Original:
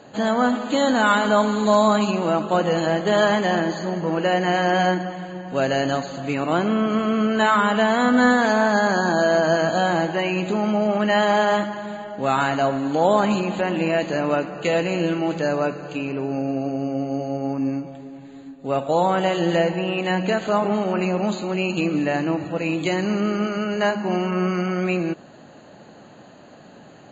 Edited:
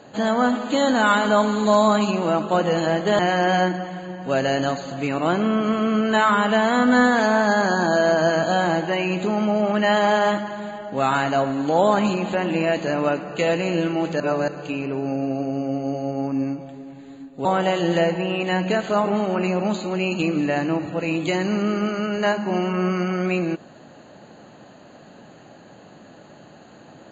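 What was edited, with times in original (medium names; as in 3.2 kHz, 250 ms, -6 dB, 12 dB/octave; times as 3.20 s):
3.19–4.45 s: delete
15.46–15.74 s: reverse
18.71–19.03 s: delete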